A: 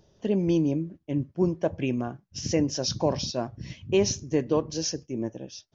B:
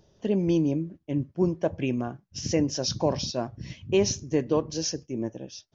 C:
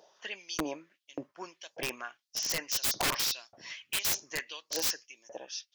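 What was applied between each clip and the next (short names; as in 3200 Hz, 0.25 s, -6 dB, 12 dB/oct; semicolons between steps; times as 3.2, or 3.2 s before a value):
nothing audible
LFO high-pass saw up 1.7 Hz 580–5700 Hz; wrapped overs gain 26 dB; gain +3 dB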